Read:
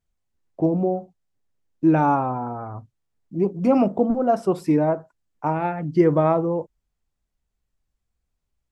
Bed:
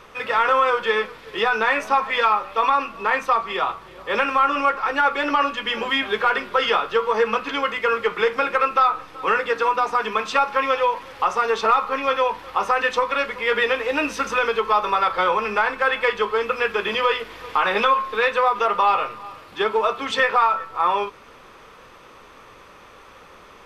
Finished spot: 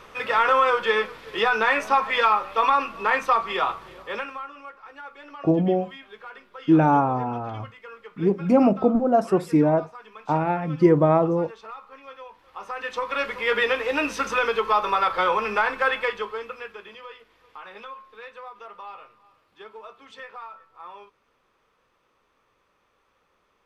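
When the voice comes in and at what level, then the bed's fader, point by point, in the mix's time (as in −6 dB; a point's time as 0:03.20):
4.85 s, +0.5 dB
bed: 0:03.92 −1 dB
0:04.54 −22 dB
0:12.30 −22 dB
0:13.27 −2 dB
0:15.88 −2 dB
0:17.01 −22 dB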